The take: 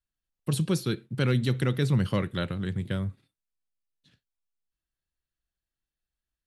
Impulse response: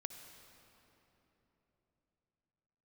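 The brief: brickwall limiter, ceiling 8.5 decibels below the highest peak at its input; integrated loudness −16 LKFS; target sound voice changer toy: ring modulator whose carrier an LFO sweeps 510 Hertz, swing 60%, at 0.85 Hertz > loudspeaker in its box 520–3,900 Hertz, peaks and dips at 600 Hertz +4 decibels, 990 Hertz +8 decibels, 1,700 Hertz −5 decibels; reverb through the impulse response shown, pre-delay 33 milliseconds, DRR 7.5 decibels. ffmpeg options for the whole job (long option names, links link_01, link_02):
-filter_complex "[0:a]alimiter=limit=-21.5dB:level=0:latency=1,asplit=2[link_01][link_02];[1:a]atrim=start_sample=2205,adelay=33[link_03];[link_02][link_03]afir=irnorm=-1:irlink=0,volume=-4.5dB[link_04];[link_01][link_04]amix=inputs=2:normalize=0,aeval=exprs='val(0)*sin(2*PI*510*n/s+510*0.6/0.85*sin(2*PI*0.85*n/s))':channel_layout=same,highpass=520,equalizer=frequency=600:width_type=q:width=4:gain=4,equalizer=frequency=990:width_type=q:width=4:gain=8,equalizer=frequency=1700:width_type=q:width=4:gain=-5,lowpass=frequency=3900:width=0.5412,lowpass=frequency=3900:width=1.3066,volume=18dB"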